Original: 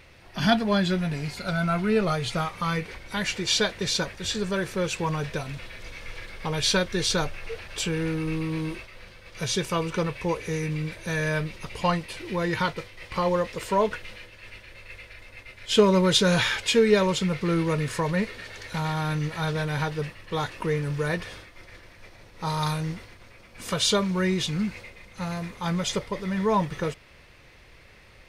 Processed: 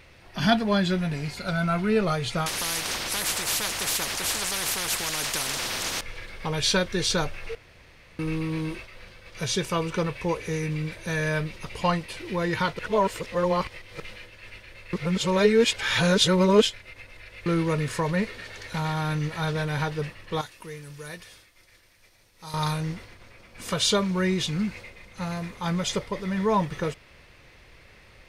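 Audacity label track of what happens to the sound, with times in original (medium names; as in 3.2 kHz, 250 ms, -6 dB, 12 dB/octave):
2.460000	6.010000	spectrum-flattening compressor 10:1
7.550000	8.190000	room tone
12.790000	14.000000	reverse
14.930000	17.460000	reverse
20.410000	22.540000	pre-emphasis filter coefficient 0.8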